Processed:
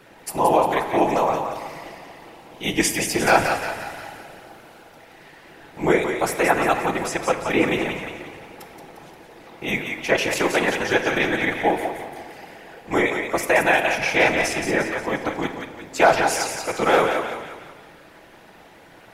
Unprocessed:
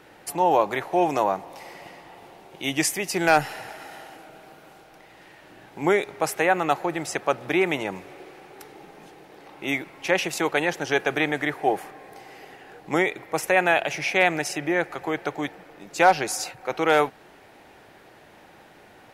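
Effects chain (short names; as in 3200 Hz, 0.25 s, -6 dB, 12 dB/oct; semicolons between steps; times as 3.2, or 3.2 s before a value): thinning echo 0.176 s, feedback 50%, high-pass 550 Hz, level -5.5 dB; whisperiser; shoebox room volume 1400 m³, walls mixed, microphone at 0.7 m; gain +1.5 dB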